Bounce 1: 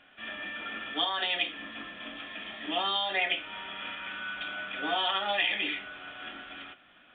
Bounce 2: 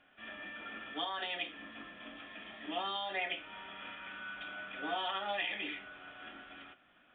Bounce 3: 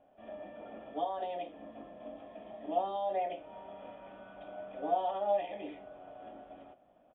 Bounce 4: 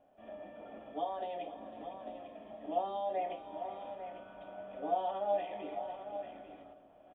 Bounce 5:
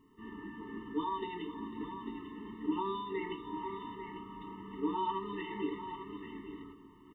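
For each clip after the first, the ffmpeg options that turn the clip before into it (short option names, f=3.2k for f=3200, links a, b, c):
-af "lowpass=f=2.3k:p=1,volume=-5.5dB"
-af "firequalizer=gain_entry='entry(360,0);entry(610,10);entry(1400,-18)':delay=0.05:min_phase=1,volume=2dB"
-af "aecho=1:1:443|501|847:0.106|0.211|0.316,volume=-2dB"
-af "afftfilt=real='re*eq(mod(floor(b*sr/1024/440),2),0)':imag='im*eq(mod(floor(b*sr/1024/440),2),0)':win_size=1024:overlap=0.75,volume=11dB"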